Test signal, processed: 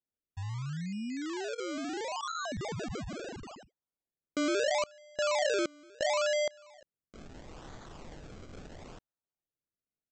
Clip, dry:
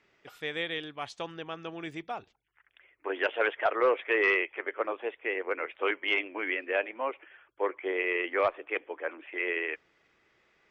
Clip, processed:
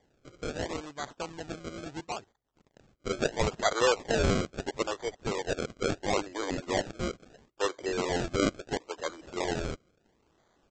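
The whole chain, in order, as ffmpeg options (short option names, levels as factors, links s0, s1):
-af "lowpass=3900,aresample=16000,acrusher=samples=12:mix=1:aa=0.000001:lfo=1:lforange=12:lforate=0.74,aresample=44100"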